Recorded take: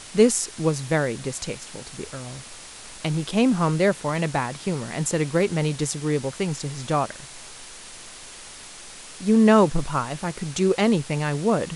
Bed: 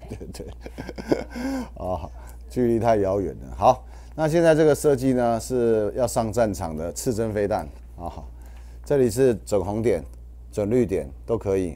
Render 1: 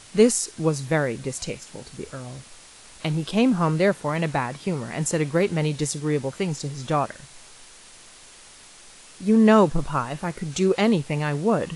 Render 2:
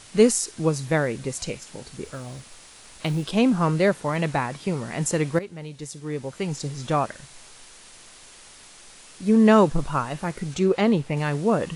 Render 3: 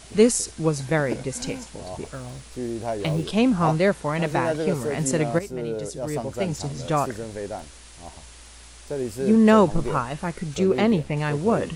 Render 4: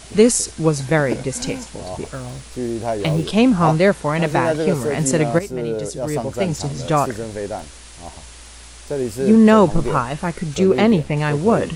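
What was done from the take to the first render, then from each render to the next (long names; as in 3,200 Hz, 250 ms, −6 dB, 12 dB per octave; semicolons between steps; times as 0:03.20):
noise reduction from a noise print 6 dB
0:02.04–0:03.30: floating-point word with a short mantissa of 4 bits; 0:05.39–0:06.63: fade in quadratic, from −14.5 dB; 0:10.54–0:11.17: high-shelf EQ 3,800 Hz −8 dB
mix in bed −9 dB
level +5.5 dB; brickwall limiter −2 dBFS, peak gain reduction 2.5 dB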